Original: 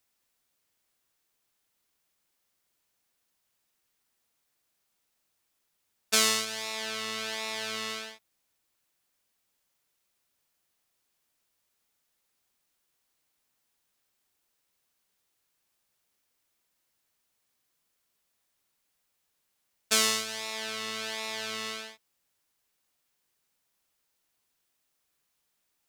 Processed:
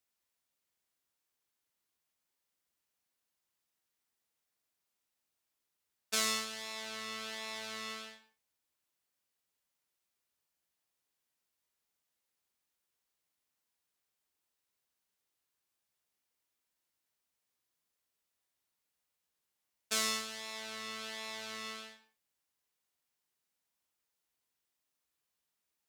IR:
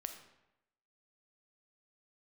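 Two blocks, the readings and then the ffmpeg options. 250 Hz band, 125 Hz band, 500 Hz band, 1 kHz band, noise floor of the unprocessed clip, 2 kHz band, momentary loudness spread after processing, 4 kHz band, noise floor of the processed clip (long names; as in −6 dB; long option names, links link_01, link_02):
−6.5 dB, −8.0 dB, −8.5 dB, −6.5 dB, −78 dBFS, −7.5 dB, 12 LU, −8.0 dB, below −85 dBFS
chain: -filter_complex "[0:a]highpass=42[link_01];[1:a]atrim=start_sample=2205,afade=type=out:start_time=0.38:duration=0.01,atrim=end_sample=17199,asetrate=66150,aresample=44100[link_02];[link_01][link_02]afir=irnorm=-1:irlink=0,volume=-2dB"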